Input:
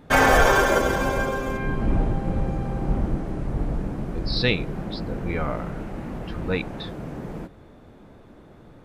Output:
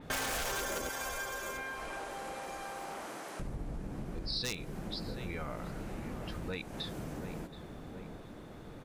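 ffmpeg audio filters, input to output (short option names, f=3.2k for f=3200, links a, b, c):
-filter_complex "[0:a]asettb=1/sr,asplit=3[a][b][c];[a]atrim=end=0.894[d];[b]atrim=start=0.89:end=3.4,asetpts=PTS-STARTPTS,afade=t=in:d=0.004:c=qsin,afade=t=out:st=2.506:d=0.004:c=qsin,highpass=790[e];[c]atrim=start=3.396[f];[d][e]acrossfade=d=0.004:c1=hsin:c2=qsin[g];[g][f]acrossfade=d=0.004:c1=qsin:c2=hsin,asplit=2[h][i];[i]adelay=725,lowpass=f=1.7k:p=1,volume=-15dB,asplit=2[j][k];[k]adelay=725,lowpass=f=1.7k:p=1,volume=0.34,asplit=2[l][m];[m]adelay=725,lowpass=f=1.7k:p=1,volume=0.34[n];[h][j][l][n]amix=inputs=4:normalize=0,aeval=exprs='0.224*(abs(mod(val(0)/0.224+3,4)-2)-1)':c=same,highshelf=f=2.6k:g=8,acompressor=threshold=-37dB:ratio=4,adynamicequalizer=threshold=0.002:dfrequency=4800:dqfactor=0.7:tfrequency=4800:tqfactor=0.7:attack=5:release=100:ratio=0.375:range=3.5:mode=boostabove:tftype=highshelf,volume=-1.5dB"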